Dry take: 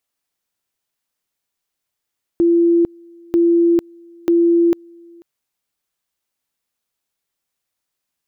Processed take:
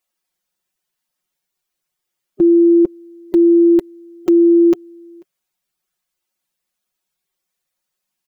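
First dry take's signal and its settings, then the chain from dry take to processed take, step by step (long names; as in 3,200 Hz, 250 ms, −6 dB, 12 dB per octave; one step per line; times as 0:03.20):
tone at two levels in turn 340 Hz −10 dBFS, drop 29.5 dB, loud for 0.45 s, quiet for 0.49 s, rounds 3
spectral magnitudes quantised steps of 15 dB
comb filter 5.5 ms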